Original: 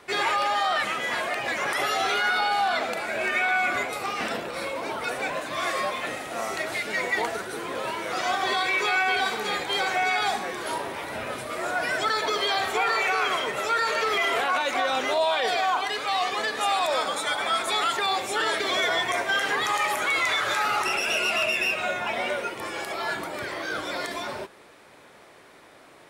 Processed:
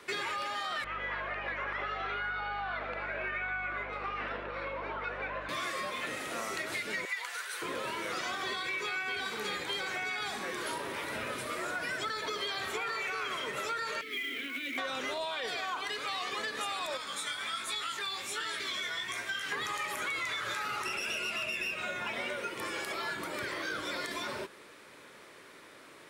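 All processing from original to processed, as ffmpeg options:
-filter_complex "[0:a]asettb=1/sr,asplit=3[s0][s1][s2];[s0]atrim=end=0.844[s3];[s1]atrim=start=0.84:end=5.49,asetpts=PTS-STARTPTS,afade=t=in:d=0.004:c=qsin,afade=t=out:st=4.646:d=0.004:c=qsin,highpass=660,lowpass=2600,aemphasis=mode=reproduction:type=riaa,aeval=exprs='val(0)+0.00631*(sin(2*PI*50*n/s)+sin(2*PI*2*50*n/s)/2+sin(2*PI*3*50*n/s)/3+sin(2*PI*4*50*n/s)/4+sin(2*PI*5*50*n/s)/5)':c=same[s4];[s2]atrim=start=5.486[s5];[s3][s4]acrossfade=d=0.004:c1=hsin:c2=qsin[s6];[s6][s5]acrossfade=d=0.004:c1=qsin:c2=hsin,asettb=1/sr,asplit=3[s7][s8][s9];[s7]atrim=end=7.054[s10];[s8]atrim=start=7.05:end=7.62,asetpts=PTS-STARTPTS,afade=t=in:d=0.004:c=qsin,afade=t=out:st=0.566:d=0.004:c=qsin,highpass=1200,afreqshift=36[s11];[s9]atrim=start=7.616[s12];[s10][s11]acrossfade=d=0.004:c1=hsin:c2=qsin[s13];[s13][s12]acrossfade=d=0.004:c1=qsin:c2=hsin,asettb=1/sr,asplit=3[s14][s15][s16];[s14]atrim=end=14.014[s17];[s15]atrim=start=14.01:end=14.78,asetpts=PTS-STARTPTS,afade=t=in:d=0.004:c=qsin,afade=t=out:st=0.766:d=0.004:c=qsin,acontrast=40,asplit=3[s18][s19][s20];[s18]bandpass=f=270:t=q:w=8,volume=1[s21];[s19]bandpass=f=2290:t=q:w=8,volume=0.501[s22];[s20]bandpass=f=3010:t=q:w=8,volume=0.355[s23];[s21][s22][s23]amix=inputs=3:normalize=0,acrusher=bits=4:mode=log:mix=0:aa=0.000001[s24];[s16]atrim=start=14.776[s25];[s17][s24]acrossfade=d=0.004:c1=hsin:c2=qsin[s26];[s26][s25]acrossfade=d=0.004:c1=qsin:c2=hsin,asettb=1/sr,asplit=3[s27][s28][s29];[s27]atrim=end=16.974[s30];[s28]atrim=start=16.97:end=19.52,asetpts=PTS-STARTPTS,afade=t=in:d=0.004:c=qsin,afade=t=out:st=2.546:d=0.004:c=qsin,equalizer=f=510:w=0.57:g=-9.5,flanger=delay=16.5:depth=6.2:speed=1.3[s31];[s29]atrim=start=19.516[s32];[s30][s31]acrossfade=d=0.004:c1=hsin:c2=qsin[s33];[s33][s32]acrossfade=d=0.004:c1=qsin:c2=hsin,equalizer=f=740:t=o:w=0.54:g=-9.5,acrossover=split=180[s34][s35];[s35]acompressor=threshold=0.0224:ratio=6[s36];[s34][s36]amix=inputs=2:normalize=0,lowshelf=f=160:g=-7"

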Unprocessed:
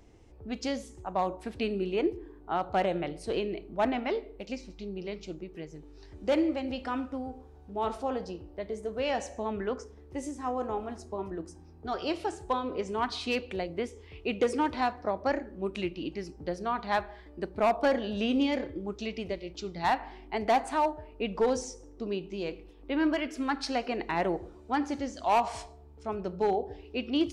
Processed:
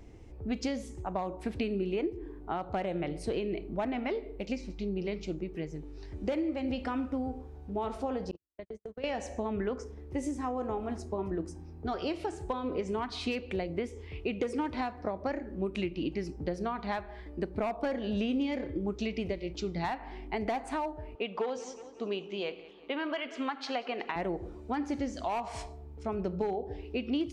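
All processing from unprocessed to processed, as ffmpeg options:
-filter_complex "[0:a]asettb=1/sr,asplit=3[s0][s1][s2];[s0]atrim=end=8.314[s3];[s1]atrim=start=8.31:end=9.04,asetpts=PTS-STARTPTS,afade=t=in:d=0.004:c=qsin,afade=t=out:st=0.726:d=0.004:c=qsin,agate=range=0.00112:threshold=0.0158:ratio=16:release=100:detection=peak,acompressor=threshold=0.00891:ratio=16:attack=3.2:release=140:knee=1:detection=peak[s4];[s2]atrim=start=9.036[s5];[s3][s4]acrossfade=d=0.004:c1=hsin:c2=qsin[s6];[s6][s5]acrossfade=d=0.004:c1=qsin:c2=hsin,asettb=1/sr,asplit=3[s7][s8][s9];[s7]atrim=end=21.154[s10];[s8]atrim=start=21.15:end=24.16,asetpts=PTS-STARTPTS,afade=t=in:d=0.004:c=qsin,afade=t=out:st=3.006:d=0.004:c=qsin,highpass=310,equalizer=f=320:t=q:w=4:g=-8,equalizer=f=770:t=q:w=4:g=3,equalizer=f=1200:t=q:w=4:g=5,equalizer=f=3200:t=q:w=4:g=8,equalizer=f=5400:t=q:w=4:g=-6,lowpass=f=6700:w=0.5412,lowpass=f=6700:w=1.3066,aecho=1:1:183|366|549|732:0.1|0.049|0.024|0.0118,atrim=end_sample=132741[s11];[s9]atrim=start=24.156[s12];[s10][s11]acrossfade=d=0.004:c1=hsin:c2=qsin[s13];[s13][s12]acrossfade=d=0.004:c1=qsin:c2=hsin,equalizer=f=2200:t=o:w=0.55:g=4,acompressor=threshold=0.0224:ratio=6,lowshelf=f=480:g=7"

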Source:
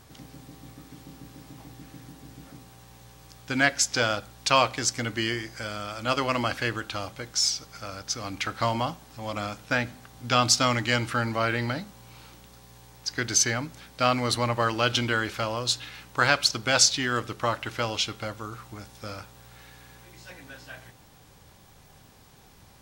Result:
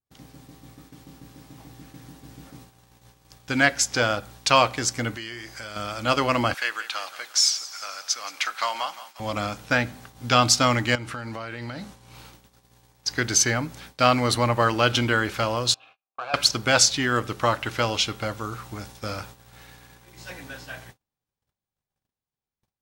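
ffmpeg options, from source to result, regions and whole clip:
-filter_complex "[0:a]asettb=1/sr,asplit=3[s0][s1][s2];[s0]atrim=end=5.154[s3];[s1]atrim=start=5.15:end=5.76,asetpts=PTS-STARTPTS,afade=t=in:d=0.004:c=qsin,afade=t=out:st=0.606:d=0.004:c=qsin,equalizer=f=170:w=0.52:g=-6.5,bandreject=f=480:w=14,acompressor=threshold=0.0141:ratio=3:attack=3.2:release=140:knee=1:detection=peak[s4];[s2]atrim=start=5.756[s5];[s3][s4]acrossfade=d=0.004:c1=hsin:c2=qsin[s6];[s6][s5]acrossfade=d=0.004:c1=qsin:c2=hsin,asettb=1/sr,asplit=3[s7][s8][s9];[s7]atrim=end=6.544[s10];[s8]atrim=start=6.54:end=9.2,asetpts=PTS-STARTPTS,afade=t=in:d=0.004:c=qsin,afade=t=out:st=2.656:d=0.004:c=qsin,highpass=1000,aecho=1:1:175|350|525|700|875:0.178|0.0907|0.0463|0.0236|0.012,atrim=end_sample=117306[s11];[s9]atrim=start=9.196[s12];[s10][s11]acrossfade=d=0.004:c1=hsin:c2=qsin[s13];[s13][s12]acrossfade=d=0.004:c1=qsin:c2=hsin,asettb=1/sr,asplit=3[s14][s15][s16];[s14]atrim=end=10.954[s17];[s15]atrim=start=10.95:end=12.14,asetpts=PTS-STARTPTS,afade=t=in:d=0.004:c=qsin,afade=t=out:st=1.186:d=0.004:c=qsin,lowpass=12000,acompressor=threshold=0.02:ratio=6:attack=3.2:release=140:knee=1:detection=peak[s18];[s16]atrim=start=12.136[s19];[s17][s18]acrossfade=d=0.004:c1=hsin:c2=qsin[s20];[s20][s19]acrossfade=d=0.004:c1=qsin:c2=hsin,asettb=1/sr,asplit=3[s21][s22][s23];[s21]atrim=end=15.744[s24];[s22]atrim=start=15.74:end=16.34,asetpts=PTS-STARTPTS,afade=t=in:d=0.004:c=qsin,afade=t=out:st=0.596:d=0.004:c=qsin,asoftclip=type=hard:threshold=0.119,asplit=3[s25][s26][s27];[s25]bandpass=f=730:t=q:w=8,volume=1[s28];[s26]bandpass=f=1090:t=q:w=8,volume=0.501[s29];[s27]bandpass=f=2440:t=q:w=8,volume=0.355[s30];[s28][s29][s30]amix=inputs=3:normalize=0[s31];[s23]atrim=start=16.336[s32];[s24][s31]acrossfade=d=0.004:c1=hsin:c2=qsin[s33];[s33][s32]acrossfade=d=0.004:c1=qsin:c2=hsin,agate=range=0.0112:threshold=0.00398:ratio=16:detection=peak,adynamicequalizer=threshold=0.0126:dfrequency=4600:dqfactor=0.72:tfrequency=4600:tqfactor=0.72:attack=5:release=100:ratio=0.375:range=3:mode=cutabove:tftype=bell,dynaudnorm=f=150:g=31:m=3.16,volume=0.891"

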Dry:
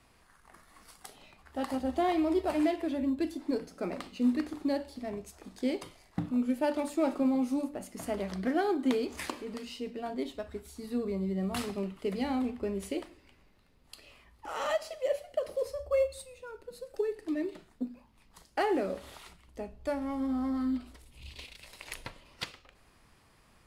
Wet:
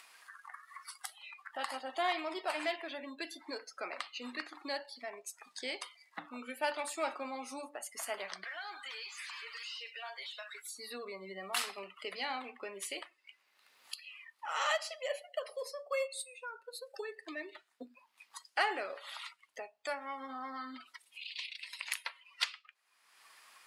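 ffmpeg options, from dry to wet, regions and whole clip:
-filter_complex "[0:a]asettb=1/sr,asplit=3[s0][s1][s2];[s0]atrim=end=8.444[s3];[s1]atrim=start=8.44:end=10.65,asetpts=PTS-STARTPTS,afade=t=in:d=0.004:c=qsin,afade=t=out:st=2.206:d=0.004:c=qsin,aderivative,acompressor=threshold=0.00282:ratio=2:attack=3.2:release=140:knee=1:detection=peak,asplit=2[s4][s5];[s5]highpass=f=720:p=1,volume=25.1,asoftclip=type=tanh:threshold=0.0211[s6];[s4][s6]amix=inputs=2:normalize=0,lowpass=f=1200:p=1,volume=0.501[s7];[s2]atrim=start=10.646[s8];[s3][s7]acrossfade=d=0.004:c1=hsin:c2=qsin[s9];[s9][s8]acrossfade=d=0.004:c1=qsin:c2=hsin,highpass=1200,afftdn=nr=23:nf=-56,acompressor=mode=upward:threshold=0.00631:ratio=2.5,volume=1.88"

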